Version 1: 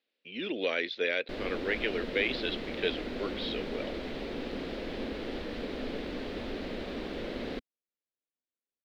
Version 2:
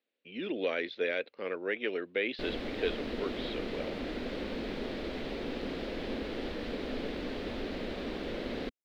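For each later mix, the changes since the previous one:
speech: add treble shelf 2.8 kHz -10.5 dB; background: entry +1.10 s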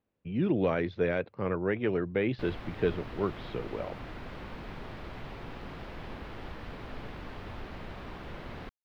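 speech: remove band-pass filter 2.8 kHz, Q 0.8; master: add graphic EQ 125/250/500/1000/2000/4000/8000 Hz +10/-11/-10/+6/-3/-9/-4 dB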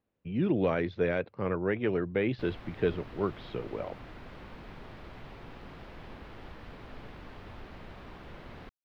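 background -4.5 dB

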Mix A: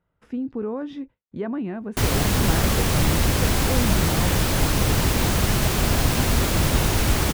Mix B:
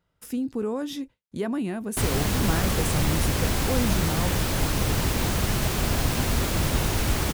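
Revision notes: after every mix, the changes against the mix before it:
speech: remove low-pass 2 kHz 12 dB/octave; background -4.0 dB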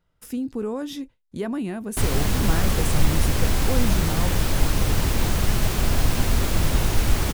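master: remove high-pass 66 Hz 6 dB/octave

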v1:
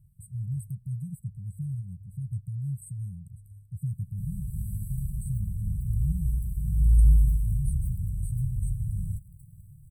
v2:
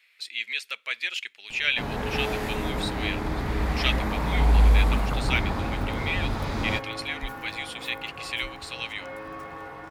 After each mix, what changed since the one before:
speech: add resonant high-pass 2.4 kHz, resonance Q 3.2; first sound: entry -2.40 s; master: remove brick-wall FIR band-stop 180–7700 Hz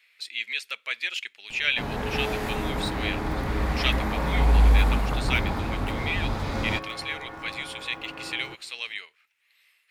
second sound: entry -2.50 s

